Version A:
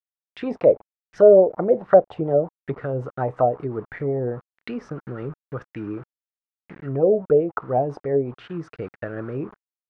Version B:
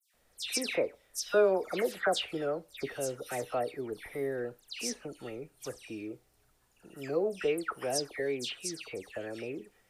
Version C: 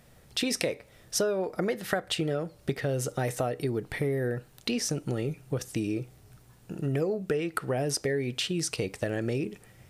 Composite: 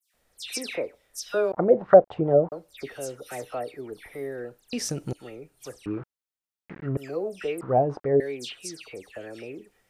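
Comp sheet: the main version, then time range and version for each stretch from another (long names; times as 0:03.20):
B
0:01.52–0:02.52: punch in from A
0:04.73–0:05.13: punch in from C
0:05.86–0:06.97: punch in from A
0:07.61–0:08.20: punch in from A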